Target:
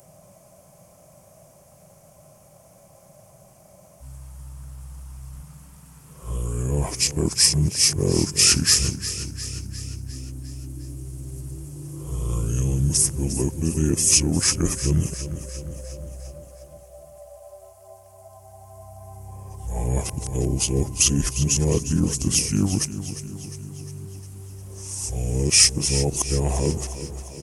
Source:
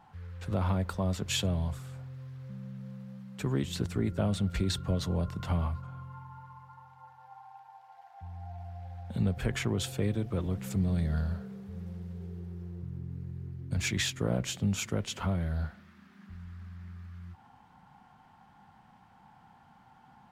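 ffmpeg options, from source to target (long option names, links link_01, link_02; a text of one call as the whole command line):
ffmpeg -i in.wav -filter_complex "[0:a]areverse,equalizer=frequency=250:width_type=o:width=1:gain=5,equalizer=frequency=500:width_type=o:width=1:gain=6,equalizer=frequency=2000:width_type=o:width=1:gain=-4,equalizer=frequency=4000:width_type=o:width=1:gain=4,asetrate=32667,aresample=44100,acrossover=split=140|3900[link_01][link_02][link_03];[link_03]aexciter=amount=15.2:drive=7.6:freq=5400[link_04];[link_01][link_02][link_04]amix=inputs=3:normalize=0,aecho=1:1:354|708|1062|1416|1770|2124:0.237|0.135|0.077|0.0439|0.025|0.0143,volume=4dB" out.wav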